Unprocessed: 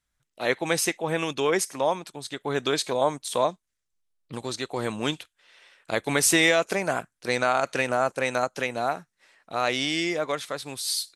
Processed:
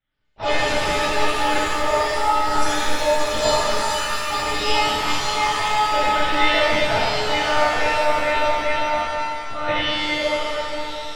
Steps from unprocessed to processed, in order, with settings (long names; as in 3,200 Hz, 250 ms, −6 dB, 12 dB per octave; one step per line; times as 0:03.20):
in parallel at −3 dB: hard clipping −24.5 dBFS, distortion −6 dB
on the sum: one-pitch LPC vocoder at 8 kHz 300 Hz
delay with pitch and tempo change per echo 114 ms, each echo +6 semitones, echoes 3
reverb with rising layers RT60 2.2 s, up +7 semitones, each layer −8 dB, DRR −10 dB
level −8 dB